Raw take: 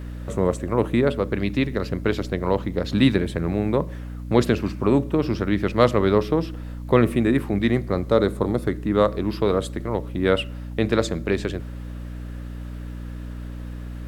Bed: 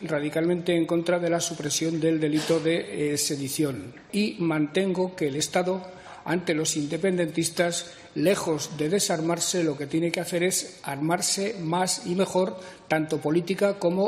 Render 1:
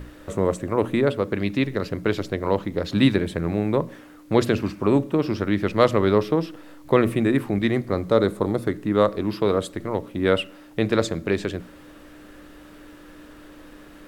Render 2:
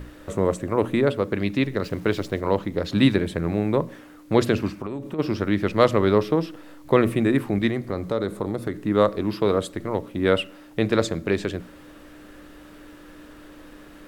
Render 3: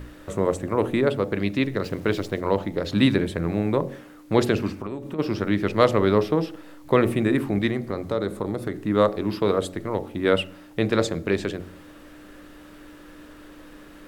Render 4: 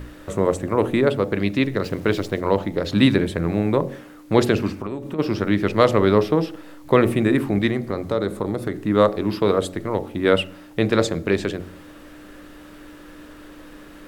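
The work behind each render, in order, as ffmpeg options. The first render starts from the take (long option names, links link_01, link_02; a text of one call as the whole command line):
ffmpeg -i in.wav -af "bandreject=frequency=60:width_type=h:width=6,bandreject=frequency=120:width_type=h:width=6,bandreject=frequency=180:width_type=h:width=6,bandreject=frequency=240:width_type=h:width=6" out.wav
ffmpeg -i in.wav -filter_complex "[0:a]asettb=1/sr,asplit=3[link_01][link_02][link_03];[link_01]atrim=end=1.844[link_04];[link_02]atrim=start=1.84:end=2.41,asetpts=PTS-STARTPTS,afade=type=in:duration=0.004:curve=qsin,afade=type=out:start_time=0.566:duration=0.004:curve=qsin,aeval=exprs='val(0)*gte(abs(val(0)),0.00668)':channel_layout=same[link_05];[link_03]atrim=start=2.406[link_06];[link_04][link_05]acrossfade=duration=0.004:curve1=hsin:curve2=qsin[link_07];[link_07][link_06]acrossfade=duration=0.004:curve1=qsin:curve2=hsin,asplit=3[link_08][link_09][link_10];[link_08]afade=type=out:start_time=4.69:duration=0.02[link_11];[link_09]acompressor=threshold=-26dB:ratio=16:attack=3.2:release=140:knee=1:detection=peak,afade=type=in:start_time=4.69:duration=0.02,afade=type=out:start_time=5.18:duration=0.02[link_12];[link_10]afade=type=in:start_time=5.18:duration=0.02[link_13];[link_11][link_12][link_13]amix=inputs=3:normalize=0,asettb=1/sr,asplit=3[link_14][link_15][link_16];[link_14]atrim=end=7.694[link_17];[link_15]atrim=start=7.69:end=8.85,asetpts=PTS-STARTPTS,afade=type=in:duration=0.004:curve=qsin,afade=type=out:start_time=1.156:duration=0.004:curve=qsin,acompressor=threshold=-24dB:ratio=2:attack=3.2:release=140:knee=1:detection=peak[link_18];[link_16]atrim=start=8.846[link_19];[link_17][link_18]acrossfade=duration=0.004:curve1=hsin:curve2=qsin[link_20];[link_20][link_19]acrossfade=duration=0.004:curve1=qsin:curve2=hsin" out.wav
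ffmpeg -i in.wav -af "bandreject=frequency=45.92:width_type=h:width=4,bandreject=frequency=91.84:width_type=h:width=4,bandreject=frequency=137.76:width_type=h:width=4,bandreject=frequency=183.68:width_type=h:width=4,bandreject=frequency=229.6:width_type=h:width=4,bandreject=frequency=275.52:width_type=h:width=4,bandreject=frequency=321.44:width_type=h:width=4,bandreject=frequency=367.36:width_type=h:width=4,bandreject=frequency=413.28:width_type=h:width=4,bandreject=frequency=459.2:width_type=h:width=4,bandreject=frequency=505.12:width_type=h:width=4,bandreject=frequency=551.04:width_type=h:width=4,bandreject=frequency=596.96:width_type=h:width=4,bandreject=frequency=642.88:width_type=h:width=4,bandreject=frequency=688.8:width_type=h:width=4,bandreject=frequency=734.72:width_type=h:width=4,bandreject=frequency=780.64:width_type=h:width=4,bandreject=frequency=826.56:width_type=h:width=4,bandreject=frequency=872.48:width_type=h:width=4" out.wav
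ffmpeg -i in.wav -af "volume=3dB,alimiter=limit=-1dB:level=0:latency=1" out.wav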